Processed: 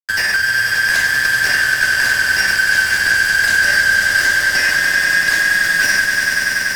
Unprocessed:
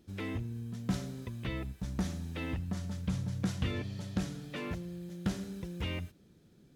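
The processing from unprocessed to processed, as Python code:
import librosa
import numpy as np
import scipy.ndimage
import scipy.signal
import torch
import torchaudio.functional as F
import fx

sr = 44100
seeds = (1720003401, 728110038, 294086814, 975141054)

p1 = fx.band_shuffle(x, sr, order='3142')
p2 = fx.bass_treble(p1, sr, bass_db=0, treble_db=5)
p3 = fx.fuzz(p2, sr, gain_db=42.0, gate_db=-49.0)
p4 = fx.granulator(p3, sr, seeds[0], grain_ms=100.0, per_s=20.0, spray_ms=19.0, spread_st=0)
p5 = p4 + fx.echo_swell(p4, sr, ms=96, loudest=5, wet_db=-8.0, dry=0)
p6 = fx.band_squash(p5, sr, depth_pct=40)
y = F.gain(torch.from_numpy(p6), -1.0).numpy()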